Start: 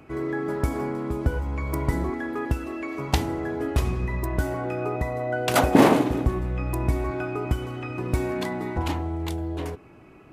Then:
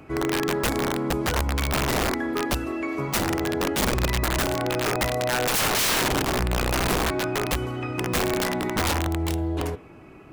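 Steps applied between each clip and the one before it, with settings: de-hum 119.7 Hz, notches 33; integer overflow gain 21 dB; trim +3.5 dB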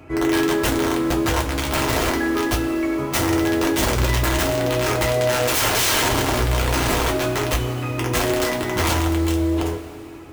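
two-slope reverb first 0.21 s, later 3 s, from -18 dB, DRR -1 dB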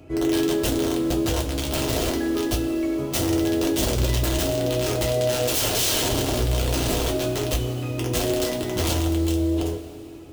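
high-order bell 1.4 kHz -9 dB; trim -2 dB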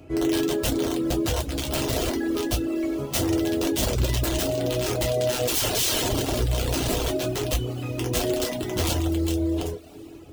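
reverb removal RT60 0.63 s

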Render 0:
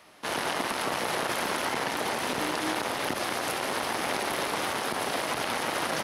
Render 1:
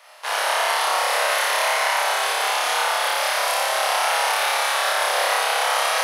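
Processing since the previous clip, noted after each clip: steep high-pass 550 Hz 36 dB/octave; flutter echo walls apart 5 m, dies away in 1.4 s; trim +4 dB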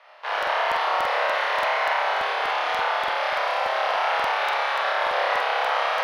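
distance through air 300 m; crackling interface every 0.29 s, samples 2048, repeat, from 0.38 s

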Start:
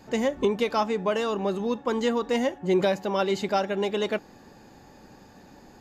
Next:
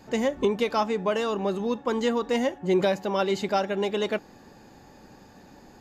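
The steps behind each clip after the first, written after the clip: no audible change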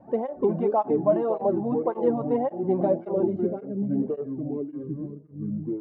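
low-pass sweep 720 Hz -> 100 Hz, 2.78–4.50 s; ever faster or slower copies 310 ms, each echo -5 st, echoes 2, each echo -6 dB; cancelling through-zero flanger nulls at 1.8 Hz, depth 2.6 ms

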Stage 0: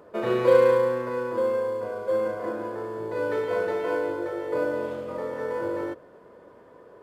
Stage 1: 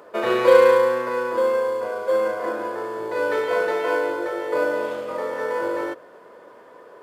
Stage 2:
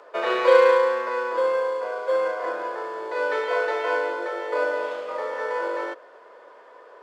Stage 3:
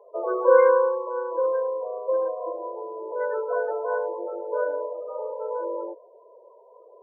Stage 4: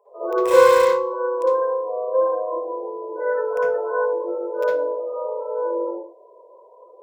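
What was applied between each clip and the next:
high-pass 730 Hz 6 dB/octave; trim +9 dB
three-band isolator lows -22 dB, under 400 Hz, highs -18 dB, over 7.2 kHz
local Wiener filter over 25 samples; loudest bins only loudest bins 16
in parallel at -11 dB: integer overflow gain 15.5 dB; on the sum: reverberation RT60 0.35 s, pre-delay 53 ms, DRR -6.5 dB; trim -2.5 dB

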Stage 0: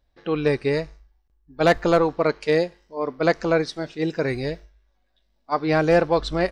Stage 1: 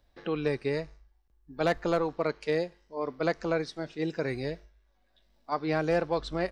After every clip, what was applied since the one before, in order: three bands compressed up and down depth 40%; trim -8.5 dB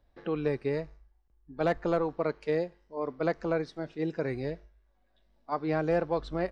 treble shelf 2.6 kHz -11 dB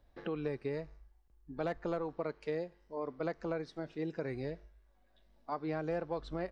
compression 2:1, threshold -41 dBFS, peak gain reduction 10.5 dB; trim +1 dB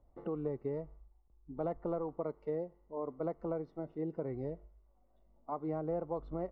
Savitzky-Golay filter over 65 samples

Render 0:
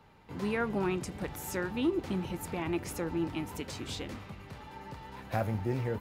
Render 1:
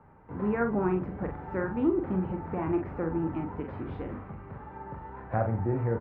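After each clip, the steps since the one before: low-pass 1.6 kHz 24 dB/octave; doubling 43 ms -6 dB; trim +3 dB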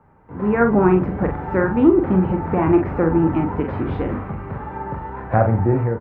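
level rider gain up to 12 dB; trim +1.5 dB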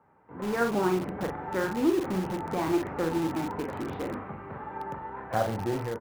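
high-pass 310 Hz 6 dB/octave; in parallel at -9.5 dB: integer overflow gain 20 dB; on the sum: trim -8.5 dB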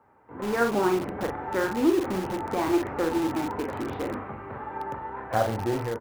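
peaking EQ 170 Hz -12.5 dB 0.26 oct; trim +3 dB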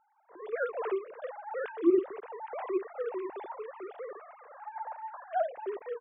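formants replaced by sine waves; trim -7 dB

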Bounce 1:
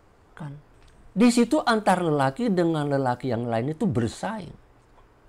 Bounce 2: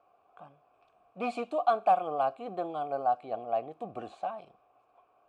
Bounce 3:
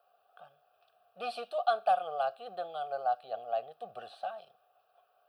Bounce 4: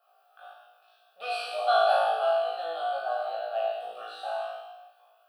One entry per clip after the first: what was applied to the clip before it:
vowel filter a; trim +2.5 dB
tilt EQ +3.5 dB/octave; static phaser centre 1.5 kHz, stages 8
spectral sustain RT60 1.23 s; high-pass 720 Hz 12 dB/octave; flutter echo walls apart 3.1 m, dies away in 0.66 s

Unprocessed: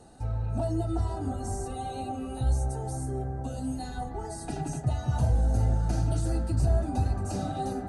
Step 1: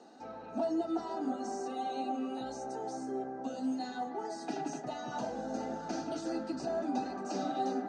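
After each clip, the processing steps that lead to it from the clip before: elliptic band-pass 240–6000 Hz, stop band 40 dB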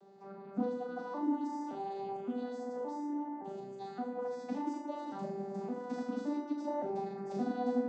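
vocoder on a broken chord major triad, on G3, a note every 568 ms; on a send: flutter echo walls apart 6.6 m, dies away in 0.46 s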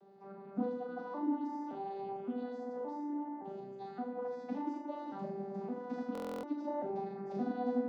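distance through air 160 m; buffer glitch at 6.13 s, samples 1024, times 12; trim -1 dB

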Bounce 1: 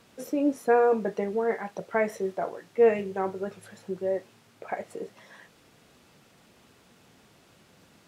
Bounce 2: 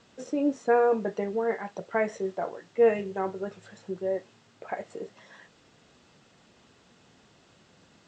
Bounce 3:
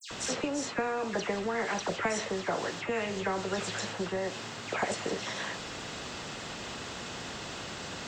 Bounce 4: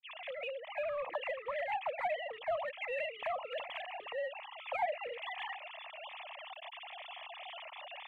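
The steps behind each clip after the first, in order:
elliptic low-pass 7.7 kHz, stop band 40 dB; band-stop 2.3 kHz, Q 17
compression 5:1, threshold -32 dBFS, peak gain reduction 14 dB; phase dispersion lows, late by 110 ms, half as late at 2.8 kHz; spectrum-flattening compressor 2:1; trim +5 dB
formants replaced by sine waves; in parallel at -4.5 dB: saturation -32.5 dBFS, distortion -10 dB; on the sum: static phaser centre 1.5 kHz, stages 6; trim -4 dB

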